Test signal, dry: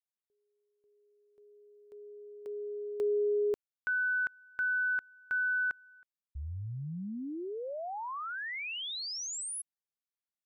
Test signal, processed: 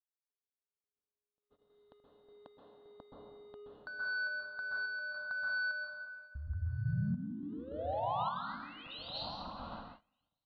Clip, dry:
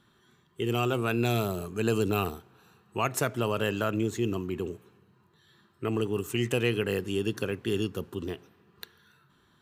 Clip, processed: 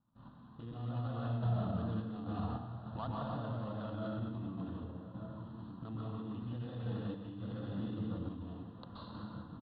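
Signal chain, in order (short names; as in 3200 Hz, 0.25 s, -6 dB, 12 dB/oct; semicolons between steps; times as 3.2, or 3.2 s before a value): median filter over 25 samples; steep low-pass 4000 Hz 72 dB/oct; compressor 3:1, threshold -49 dBFS; bell 280 Hz +7 dB 1.3 oct; outdoor echo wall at 210 m, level -15 dB; plate-style reverb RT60 1.3 s, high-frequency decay 0.9×, pre-delay 0.115 s, DRR -5.5 dB; gate -58 dBFS, range -22 dB; high shelf 3000 Hz +8.5 dB; limiter -33 dBFS; random-step tremolo; fixed phaser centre 940 Hz, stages 4; gain +10 dB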